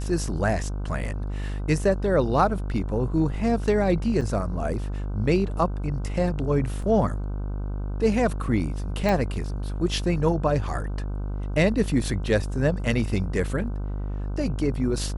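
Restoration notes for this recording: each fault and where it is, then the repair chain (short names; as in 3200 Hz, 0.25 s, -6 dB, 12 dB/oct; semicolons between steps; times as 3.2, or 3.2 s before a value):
buzz 50 Hz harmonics 31 -29 dBFS
4.21–4.22 gap 6.1 ms
6.82 gap 3.7 ms
9.09 pop -12 dBFS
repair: de-click; de-hum 50 Hz, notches 31; interpolate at 4.21, 6.1 ms; interpolate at 6.82, 3.7 ms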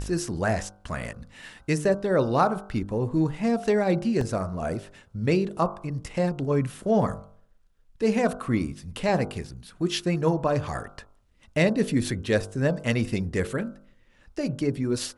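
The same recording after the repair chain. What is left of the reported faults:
none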